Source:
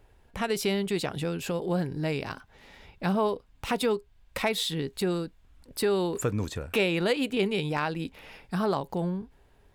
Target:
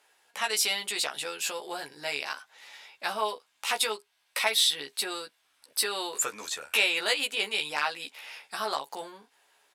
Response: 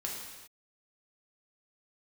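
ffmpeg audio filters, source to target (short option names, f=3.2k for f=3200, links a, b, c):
-filter_complex "[0:a]highpass=830,asettb=1/sr,asplit=3[a][b][c];[a]atrim=end=3.904[d];[b]atrim=start=3.9:end=6.03,asetpts=PTS-STARTPTS,afade=t=in:d=0.004:c=qsin,afade=t=out:st=2.126:d=0.004:c=qsin,bandreject=f=7k:w=7.3[e];[c]atrim=start=6.026[f];[d][e]acrossfade=d=0.004:c1=hsin:c2=qsin[g];[g][f]acrossfade=d=0.004:c1=qsin:c2=hsin,lowpass=12k,highshelf=f=3.4k:g=10,asplit=2[h][i];[i]adelay=14,volume=-3dB[j];[h][j]amix=inputs=2:normalize=0"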